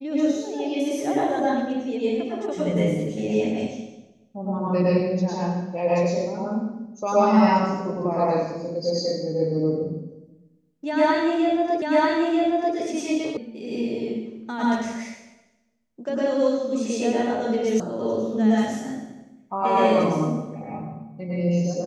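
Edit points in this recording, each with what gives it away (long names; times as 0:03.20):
0:11.82: the same again, the last 0.94 s
0:13.37: cut off before it has died away
0:17.80: cut off before it has died away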